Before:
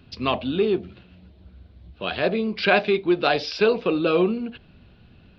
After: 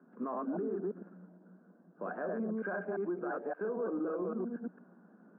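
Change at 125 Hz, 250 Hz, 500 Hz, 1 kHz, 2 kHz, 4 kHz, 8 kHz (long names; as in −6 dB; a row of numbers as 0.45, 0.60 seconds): −15.0 dB, −12.0 dB, −14.0 dB, −15.0 dB, −18.5 dB, below −40 dB, can't be measured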